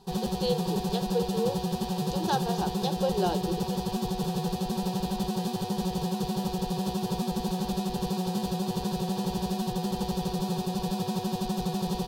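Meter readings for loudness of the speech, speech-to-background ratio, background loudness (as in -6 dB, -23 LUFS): -33.0 LUFS, -2.5 dB, -30.5 LUFS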